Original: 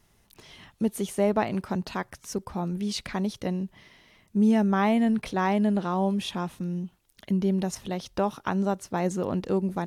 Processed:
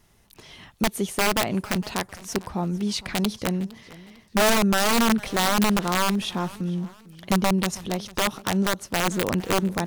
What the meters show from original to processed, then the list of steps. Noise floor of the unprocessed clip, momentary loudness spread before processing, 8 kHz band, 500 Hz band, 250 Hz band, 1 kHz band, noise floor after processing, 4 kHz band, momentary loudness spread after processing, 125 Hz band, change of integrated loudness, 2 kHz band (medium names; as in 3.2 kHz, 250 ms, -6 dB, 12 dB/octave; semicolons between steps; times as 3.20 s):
-64 dBFS, 11 LU, +12.0 dB, +1.5 dB, +0.5 dB, +4.5 dB, -57 dBFS, +12.0 dB, 10 LU, +2.0 dB, +3.0 dB, +10.0 dB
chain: integer overflow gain 18 dB; modulated delay 455 ms, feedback 36%, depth 152 cents, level -20 dB; trim +3.5 dB